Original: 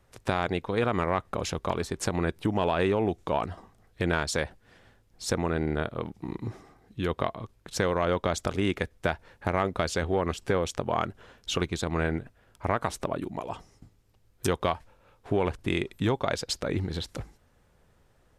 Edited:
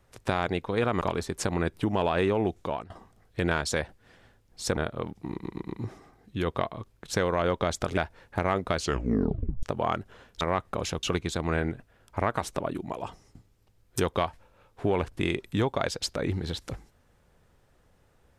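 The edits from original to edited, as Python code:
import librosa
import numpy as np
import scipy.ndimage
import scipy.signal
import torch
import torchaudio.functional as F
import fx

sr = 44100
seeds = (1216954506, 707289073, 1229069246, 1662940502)

y = fx.edit(x, sr, fx.move(start_s=1.01, length_s=0.62, to_s=11.5),
    fx.fade_out_to(start_s=3.21, length_s=0.31, floor_db=-18.5),
    fx.cut(start_s=5.39, length_s=0.37),
    fx.stutter(start_s=6.31, slice_s=0.12, count=4),
    fx.cut(start_s=8.6, length_s=0.46),
    fx.tape_stop(start_s=9.86, length_s=0.86), tone=tone)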